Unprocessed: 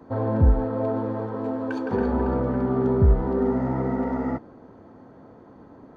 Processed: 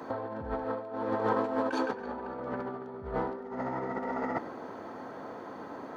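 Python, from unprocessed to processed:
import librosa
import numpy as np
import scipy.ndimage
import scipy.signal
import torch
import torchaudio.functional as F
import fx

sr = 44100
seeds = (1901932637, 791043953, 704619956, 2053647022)

y = fx.highpass(x, sr, hz=980.0, slope=6)
y = fx.over_compress(y, sr, threshold_db=-39.0, ratio=-0.5)
y = y + 10.0 ** (-18.0 / 20.0) * np.pad(y, (int(101 * sr / 1000.0), 0))[:len(y)]
y = y * librosa.db_to_amplitude(7.0)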